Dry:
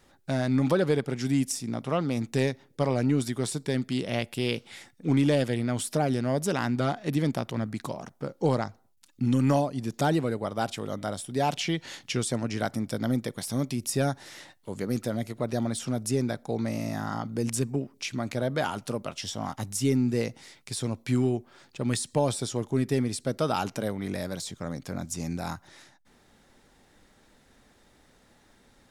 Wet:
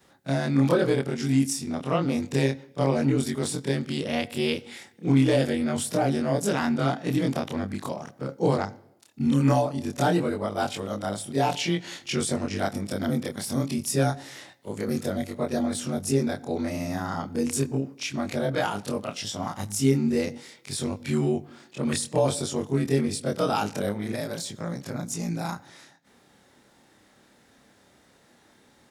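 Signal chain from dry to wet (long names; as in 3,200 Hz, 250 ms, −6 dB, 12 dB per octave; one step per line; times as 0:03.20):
every overlapping window played backwards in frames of 59 ms
high-pass filter 99 Hz
on a send: convolution reverb RT60 0.85 s, pre-delay 73 ms, DRR 22 dB
on the sum: level +5.5 dB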